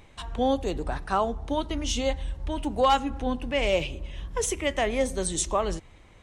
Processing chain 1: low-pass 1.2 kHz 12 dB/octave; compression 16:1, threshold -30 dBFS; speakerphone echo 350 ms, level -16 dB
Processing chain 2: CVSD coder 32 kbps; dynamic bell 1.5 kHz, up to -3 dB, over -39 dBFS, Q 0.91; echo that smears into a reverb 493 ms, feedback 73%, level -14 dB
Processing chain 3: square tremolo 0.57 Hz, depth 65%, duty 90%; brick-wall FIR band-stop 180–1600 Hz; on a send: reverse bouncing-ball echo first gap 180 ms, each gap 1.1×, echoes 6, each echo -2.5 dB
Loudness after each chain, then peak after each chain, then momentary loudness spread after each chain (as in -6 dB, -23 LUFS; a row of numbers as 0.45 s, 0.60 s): -36.5 LUFS, -29.0 LUFS, -30.0 LUFS; -21.0 dBFS, -12.5 dBFS, -13.0 dBFS; 5 LU, 8 LU, 8 LU